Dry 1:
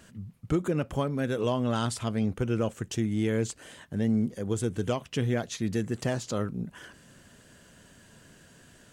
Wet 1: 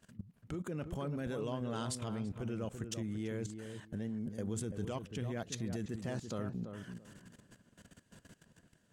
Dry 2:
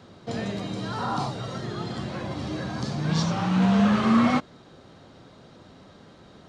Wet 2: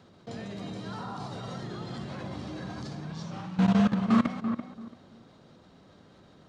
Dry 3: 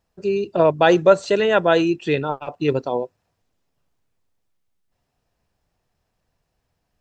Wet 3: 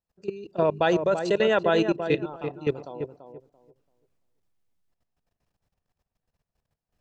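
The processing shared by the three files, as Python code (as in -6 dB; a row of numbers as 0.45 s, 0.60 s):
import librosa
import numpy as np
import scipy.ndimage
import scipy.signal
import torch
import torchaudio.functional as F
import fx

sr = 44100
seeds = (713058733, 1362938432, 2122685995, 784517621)

p1 = fx.peak_eq(x, sr, hz=180.0, db=2.0, octaves=0.59)
p2 = fx.level_steps(p1, sr, step_db=18)
p3 = p2 + fx.echo_filtered(p2, sr, ms=337, feedback_pct=22, hz=1200.0, wet_db=-7, dry=0)
y = p3 * 10.0 ** (-2.5 / 20.0)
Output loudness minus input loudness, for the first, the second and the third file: -10.5 LU, -5.0 LU, -6.0 LU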